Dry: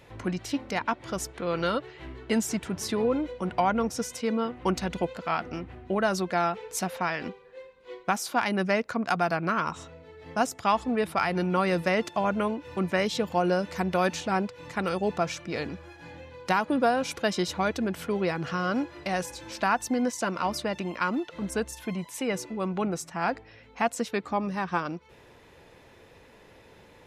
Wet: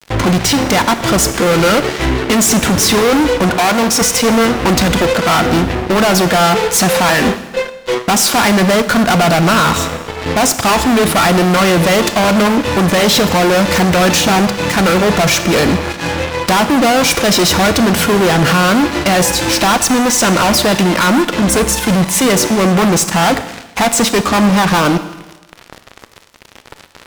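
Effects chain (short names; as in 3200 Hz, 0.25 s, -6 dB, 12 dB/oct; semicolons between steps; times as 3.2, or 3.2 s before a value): fuzz box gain 43 dB, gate -47 dBFS; 3.5–4.01 low shelf 180 Hz -11 dB; Schroeder reverb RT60 1.1 s, combs from 27 ms, DRR 10.5 dB; gain +3.5 dB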